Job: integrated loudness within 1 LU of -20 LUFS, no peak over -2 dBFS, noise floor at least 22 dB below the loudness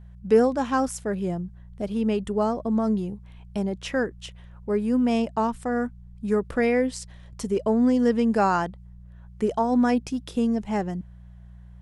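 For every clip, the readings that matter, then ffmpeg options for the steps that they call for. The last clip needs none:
hum 60 Hz; harmonics up to 180 Hz; hum level -42 dBFS; loudness -25.0 LUFS; peak -8.0 dBFS; loudness target -20.0 LUFS
-> -af "bandreject=f=60:t=h:w=4,bandreject=f=120:t=h:w=4,bandreject=f=180:t=h:w=4"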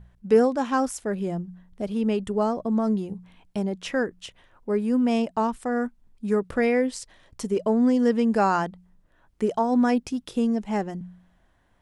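hum none; loudness -25.0 LUFS; peak -8.5 dBFS; loudness target -20.0 LUFS
-> -af "volume=5dB"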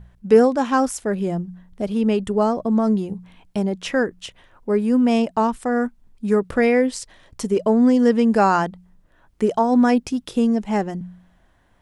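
loudness -20.0 LUFS; peak -3.5 dBFS; noise floor -58 dBFS

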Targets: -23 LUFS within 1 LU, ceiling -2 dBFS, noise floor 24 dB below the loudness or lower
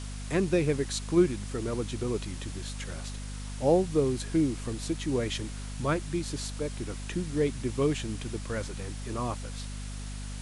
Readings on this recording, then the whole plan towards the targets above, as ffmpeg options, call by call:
hum 50 Hz; harmonics up to 250 Hz; hum level -35 dBFS; noise floor -38 dBFS; noise floor target -55 dBFS; loudness -31.0 LUFS; peak -11.5 dBFS; loudness target -23.0 LUFS
-> -af "bandreject=f=50:t=h:w=6,bandreject=f=100:t=h:w=6,bandreject=f=150:t=h:w=6,bandreject=f=200:t=h:w=6,bandreject=f=250:t=h:w=6"
-af "afftdn=nr=17:nf=-38"
-af "volume=8dB"

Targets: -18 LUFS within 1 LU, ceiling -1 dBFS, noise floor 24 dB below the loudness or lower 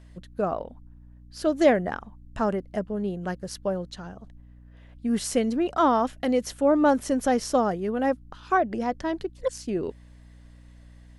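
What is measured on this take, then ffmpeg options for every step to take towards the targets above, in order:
hum 60 Hz; harmonics up to 300 Hz; hum level -44 dBFS; loudness -26.0 LUFS; peak -7.0 dBFS; loudness target -18.0 LUFS
-> -af "bandreject=f=60:t=h:w=4,bandreject=f=120:t=h:w=4,bandreject=f=180:t=h:w=4,bandreject=f=240:t=h:w=4,bandreject=f=300:t=h:w=4"
-af "volume=8dB,alimiter=limit=-1dB:level=0:latency=1"

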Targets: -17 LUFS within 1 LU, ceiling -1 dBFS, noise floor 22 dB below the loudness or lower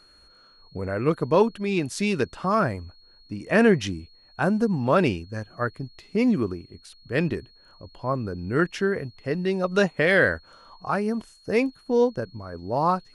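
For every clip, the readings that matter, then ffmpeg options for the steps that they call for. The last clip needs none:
steady tone 4300 Hz; tone level -54 dBFS; loudness -24.5 LUFS; peak -6.0 dBFS; loudness target -17.0 LUFS
-> -af "bandreject=f=4.3k:w=30"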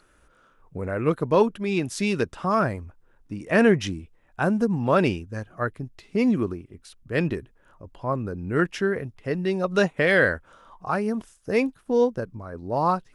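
steady tone none; loudness -24.5 LUFS; peak -6.0 dBFS; loudness target -17.0 LUFS
-> -af "volume=7.5dB,alimiter=limit=-1dB:level=0:latency=1"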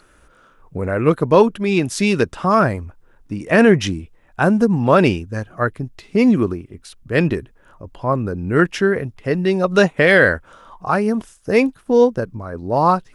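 loudness -17.5 LUFS; peak -1.0 dBFS; noise floor -53 dBFS

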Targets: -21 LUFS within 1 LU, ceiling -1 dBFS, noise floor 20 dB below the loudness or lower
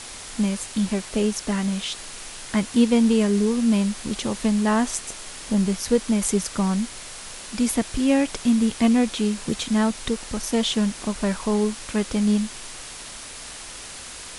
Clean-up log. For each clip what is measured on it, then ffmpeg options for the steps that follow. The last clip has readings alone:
noise floor -38 dBFS; noise floor target -43 dBFS; loudness -23.0 LUFS; peak -6.5 dBFS; loudness target -21.0 LUFS
-> -af "afftdn=nr=6:nf=-38"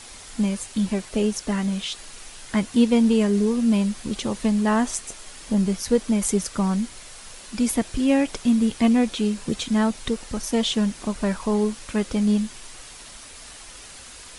noise floor -43 dBFS; loudness -23.0 LUFS; peak -6.5 dBFS; loudness target -21.0 LUFS
-> -af "volume=2dB"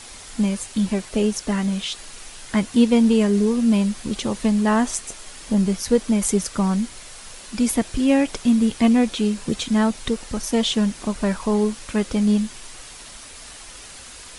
loudness -21.0 LUFS; peak -4.5 dBFS; noise floor -41 dBFS

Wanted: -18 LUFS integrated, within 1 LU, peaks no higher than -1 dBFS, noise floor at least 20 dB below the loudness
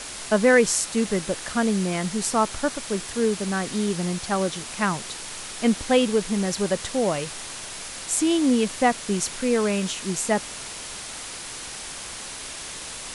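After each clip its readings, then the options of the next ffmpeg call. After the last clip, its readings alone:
noise floor -36 dBFS; noise floor target -45 dBFS; loudness -24.5 LUFS; peak -5.5 dBFS; loudness target -18.0 LUFS
-> -af "afftdn=nr=9:nf=-36"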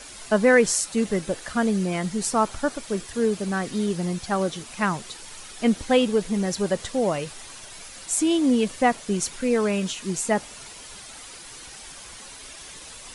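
noise floor -42 dBFS; noise floor target -44 dBFS
-> -af "afftdn=nr=6:nf=-42"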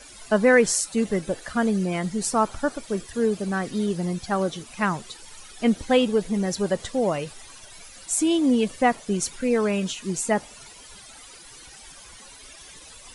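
noise floor -46 dBFS; loudness -24.0 LUFS; peak -5.5 dBFS; loudness target -18.0 LUFS
-> -af "volume=6dB,alimiter=limit=-1dB:level=0:latency=1"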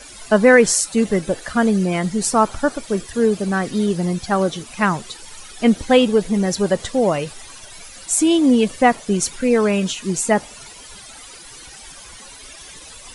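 loudness -18.0 LUFS; peak -1.0 dBFS; noise floor -40 dBFS

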